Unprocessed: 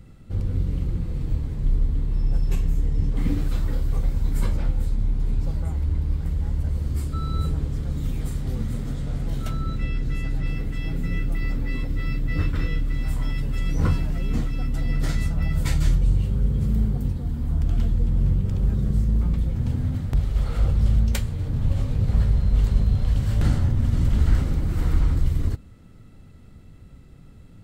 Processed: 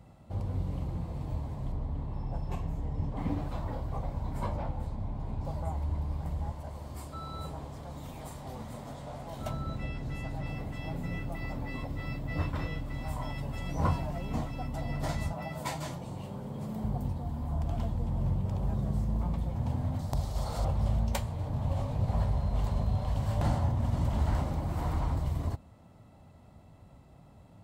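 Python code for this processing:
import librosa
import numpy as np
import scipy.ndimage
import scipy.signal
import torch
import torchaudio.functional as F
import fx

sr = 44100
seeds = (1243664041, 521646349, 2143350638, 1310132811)

y = fx.high_shelf(x, sr, hz=4900.0, db=-11.0, at=(1.72, 5.45))
y = fx.low_shelf(y, sr, hz=250.0, db=-10.0, at=(6.51, 9.4))
y = fx.highpass(y, sr, hz=190.0, slope=12, at=(15.32, 16.84))
y = fx.high_shelf_res(y, sr, hz=3600.0, db=8.5, q=1.5, at=(19.99, 20.65))
y = scipy.signal.sosfilt(scipy.signal.butter(2, 62.0, 'highpass', fs=sr, output='sos'), y)
y = fx.band_shelf(y, sr, hz=790.0, db=13.0, octaves=1.1)
y = F.gain(torch.from_numpy(y), -6.5).numpy()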